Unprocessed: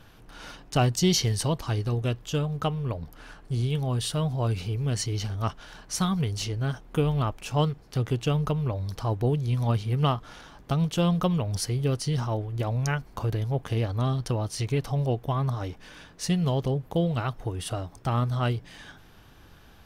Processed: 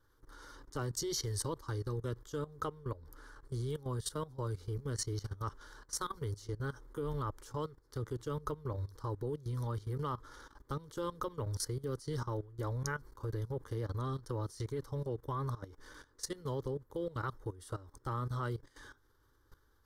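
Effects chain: fixed phaser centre 700 Hz, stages 6; level quantiser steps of 17 dB; gain -2 dB

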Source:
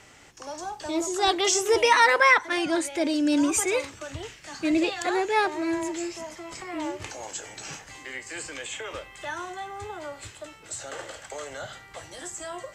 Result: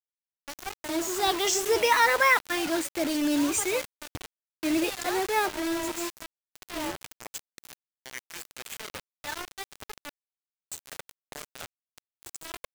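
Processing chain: spectral noise reduction 17 dB; bit-crush 5-bit; gain -3 dB

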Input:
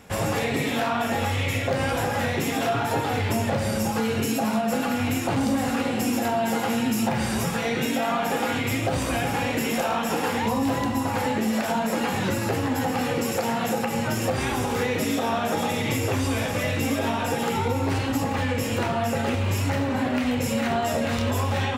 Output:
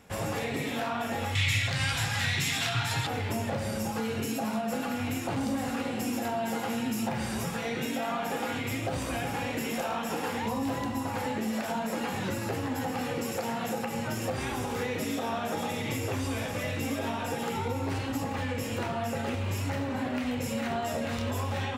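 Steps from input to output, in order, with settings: 1.35–3.07 graphic EQ 125/250/500/2000/4000/8000 Hz +10/-7/-12/+6/+11/+7 dB; gain -7 dB

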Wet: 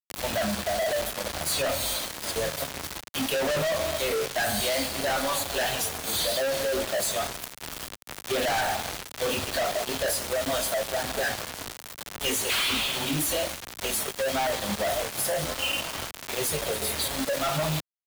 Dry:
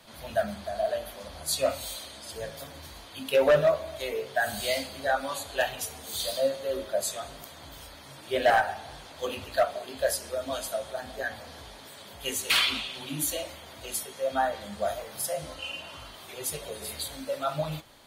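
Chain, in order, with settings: companded quantiser 2-bit; three-band squash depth 40%

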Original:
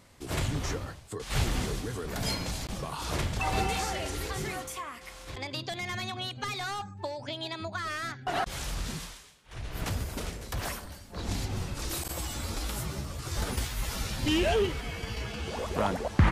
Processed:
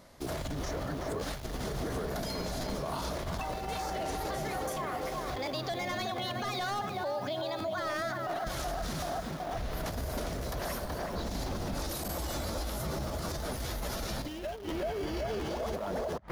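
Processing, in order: bell 2600 Hz -6 dB 0.66 oct; on a send: tape echo 0.377 s, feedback 67%, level -3.5 dB, low-pass 1400 Hz; on the sum: negative-ratio compressor -32 dBFS, ratio -0.5; in parallel at -8 dB: bit-crush 7-bit; on the sum: thirty-one-band EQ 100 Hz -9 dB, 630 Hz +8 dB, 8000 Hz -8 dB; limiter -26.5 dBFS, peak gain reduction 11.5 dB; crackling interface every 0.71 s repeat, from 0.48

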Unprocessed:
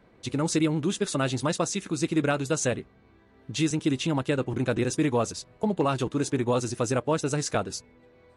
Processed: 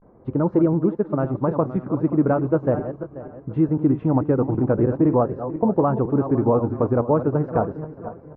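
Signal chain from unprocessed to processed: regenerating reverse delay 0.253 s, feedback 53%, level -10.5 dB; vibrato 0.41 Hz 83 cents; LPF 1100 Hz 24 dB/oct; 0.75–1.51 upward expander 1.5:1, over -36 dBFS; gain +6.5 dB

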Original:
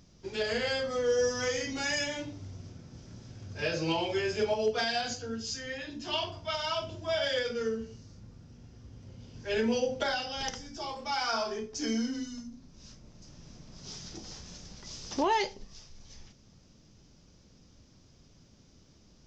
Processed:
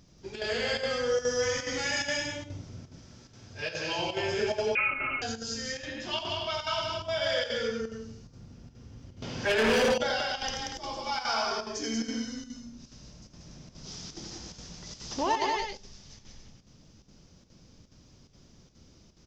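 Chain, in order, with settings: 2.84–3.99 low shelf 470 Hz -8 dB; on a send: loudspeakers at several distances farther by 29 m -5 dB, 63 m -3 dB, 98 m -8 dB; on the sum: chopper 2.4 Hz, depth 60%, duty 85%; 4.75–5.22 inverted band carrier 2900 Hz; 9.22–9.98 overdrive pedal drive 28 dB, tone 2200 Hz, clips at -14.5 dBFS; dynamic EQ 310 Hz, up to -4 dB, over -39 dBFS, Q 0.84

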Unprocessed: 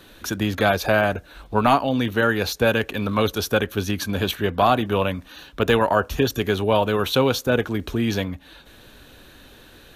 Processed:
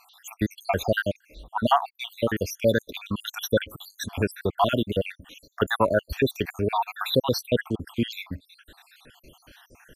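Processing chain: random spectral dropouts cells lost 71%

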